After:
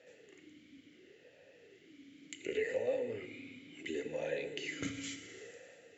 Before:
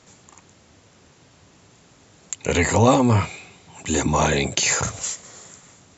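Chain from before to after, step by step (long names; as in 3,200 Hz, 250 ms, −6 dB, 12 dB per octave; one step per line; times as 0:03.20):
0:02.34–0:04.82: downward compressor 3 to 1, threshold −35 dBFS, peak gain reduction 17.5 dB
feedback delay network reverb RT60 2.4 s, low-frequency decay 0.9×, high-frequency decay 0.9×, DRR 6.5 dB
formant filter swept between two vowels e-i 0.7 Hz
level +5 dB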